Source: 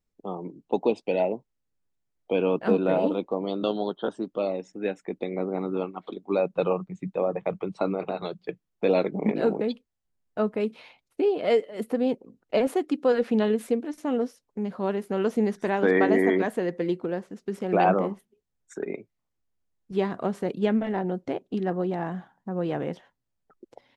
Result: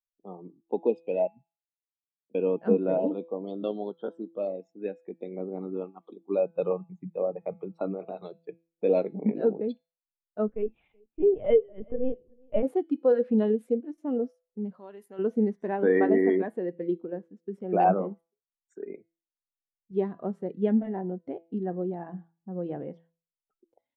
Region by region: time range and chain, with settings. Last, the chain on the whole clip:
1.27–2.35 s: Butterworth band-pass 170 Hz, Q 1.7 + compressor with a negative ratio -46 dBFS, ratio -0.5
10.48–12.63 s: LPC vocoder at 8 kHz pitch kept + delay 377 ms -21 dB
14.74–15.19 s: tilt EQ +3.5 dB/octave + compression 2:1, threshold -34 dBFS
whole clip: de-hum 166.7 Hz, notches 27; spectral contrast expander 1.5:1; trim -2 dB

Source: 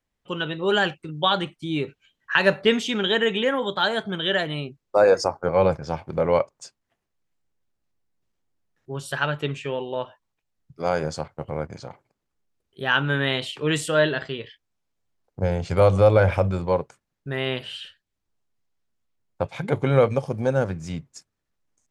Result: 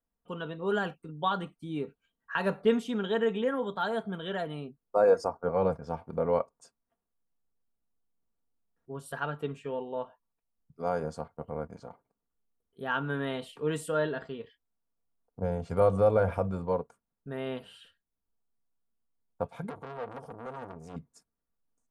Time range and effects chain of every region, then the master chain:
19.69–20.96 s: compression 8:1, threshold -20 dBFS + transformer saturation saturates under 2.2 kHz
whole clip: high-order bell 3.6 kHz -10.5 dB 2.3 oct; comb 4.3 ms, depth 48%; trim -7.5 dB

